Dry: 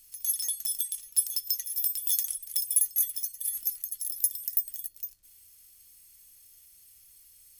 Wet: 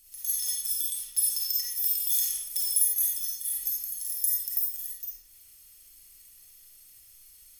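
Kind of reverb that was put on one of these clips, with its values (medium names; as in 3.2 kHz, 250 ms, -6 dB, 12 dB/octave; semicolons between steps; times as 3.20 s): algorithmic reverb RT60 0.91 s, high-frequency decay 0.75×, pre-delay 10 ms, DRR -6 dB; trim -2.5 dB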